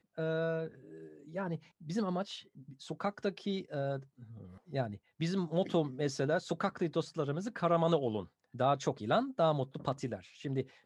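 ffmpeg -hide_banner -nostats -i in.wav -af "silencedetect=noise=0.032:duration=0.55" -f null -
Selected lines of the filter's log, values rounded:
silence_start: 0.63
silence_end: 1.37 | silence_duration: 0.73
silence_start: 2.22
silence_end: 2.91 | silence_duration: 0.69
silence_start: 3.96
silence_end: 4.74 | silence_duration: 0.78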